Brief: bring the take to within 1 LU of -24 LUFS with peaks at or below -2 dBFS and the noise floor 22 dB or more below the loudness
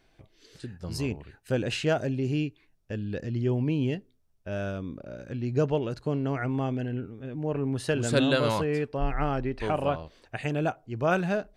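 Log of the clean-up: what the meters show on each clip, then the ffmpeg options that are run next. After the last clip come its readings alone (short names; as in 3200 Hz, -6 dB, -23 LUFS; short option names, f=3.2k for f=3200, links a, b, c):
loudness -29.5 LUFS; peak -10.5 dBFS; loudness target -24.0 LUFS
-> -af "volume=5.5dB"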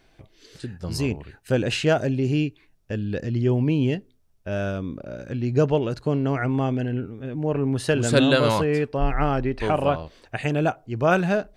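loudness -24.0 LUFS; peak -5.0 dBFS; noise floor -60 dBFS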